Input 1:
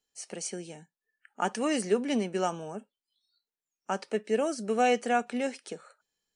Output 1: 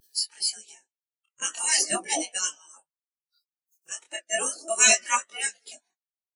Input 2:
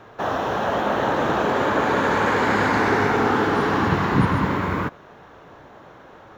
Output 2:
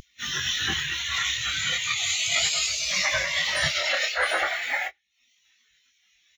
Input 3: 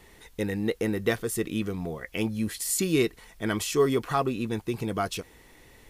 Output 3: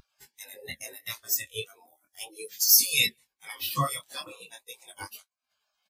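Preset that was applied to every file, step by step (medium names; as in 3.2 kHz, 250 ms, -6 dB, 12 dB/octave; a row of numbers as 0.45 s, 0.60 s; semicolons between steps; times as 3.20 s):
flange 1.7 Hz, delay 8.8 ms, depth 7.8 ms, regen +72%; upward compressor, threshold -34 dBFS; peak limiter -19 dBFS; treble shelf 6.2 kHz +6 dB; gate -56 dBFS, range -24 dB; high-pass 50 Hz 24 dB/octave; tone controls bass -1 dB, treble +14 dB; speakerphone echo 180 ms, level -19 dB; spectral gate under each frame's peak -15 dB weak; saturation -22.5 dBFS; chorus 0.37 Hz, delay 20 ms, depth 7.8 ms; spectral contrast expander 2.5:1; normalise loudness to -24 LUFS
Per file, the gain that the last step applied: +22.0 dB, +16.5 dB, +18.5 dB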